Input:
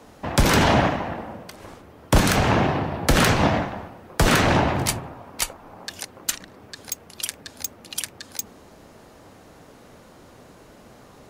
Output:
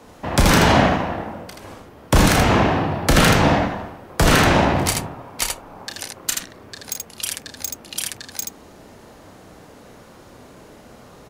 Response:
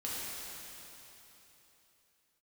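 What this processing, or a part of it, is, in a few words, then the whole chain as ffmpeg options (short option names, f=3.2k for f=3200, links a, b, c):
slapback doubling: -filter_complex "[0:a]asplit=3[a][b][c];[b]adelay=32,volume=-6.5dB[d];[c]adelay=80,volume=-4dB[e];[a][d][e]amix=inputs=3:normalize=0,volume=1.5dB"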